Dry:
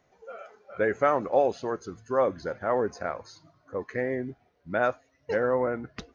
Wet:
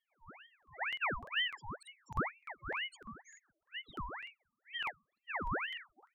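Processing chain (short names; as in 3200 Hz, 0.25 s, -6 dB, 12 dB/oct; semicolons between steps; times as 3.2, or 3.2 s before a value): loudest bins only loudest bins 1; tilt +4 dB/oct; crackling interface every 0.30 s, samples 2048, repeat, from 0.58; ring modulator with a swept carrier 1500 Hz, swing 70%, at 2.1 Hz; gain +1.5 dB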